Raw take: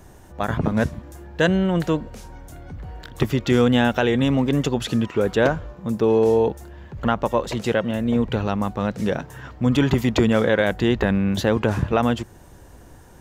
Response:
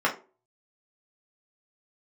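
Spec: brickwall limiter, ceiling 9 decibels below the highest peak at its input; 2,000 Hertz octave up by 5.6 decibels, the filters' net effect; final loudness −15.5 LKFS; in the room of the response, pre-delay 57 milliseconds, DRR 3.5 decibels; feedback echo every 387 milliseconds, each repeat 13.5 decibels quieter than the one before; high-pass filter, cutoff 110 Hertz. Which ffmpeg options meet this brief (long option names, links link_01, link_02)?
-filter_complex "[0:a]highpass=110,equalizer=frequency=2000:width_type=o:gain=7.5,alimiter=limit=-10dB:level=0:latency=1,aecho=1:1:387|774:0.211|0.0444,asplit=2[link_01][link_02];[1:a]atrim=start_sample=2205,adelay=57[link_03];[link_02][link_03]afir=irnorm=-1:irlink=0,volume=-18dB[link_04];[link_01][link_04]amix=inputs=2:normalize=0,volume=6.5dB"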